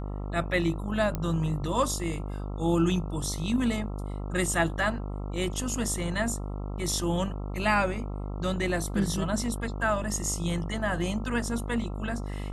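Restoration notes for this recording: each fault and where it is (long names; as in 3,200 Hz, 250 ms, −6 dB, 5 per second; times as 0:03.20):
mains buzz 50 Hz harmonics 27 −34 dBFS
0:01.15: click −16 dBFS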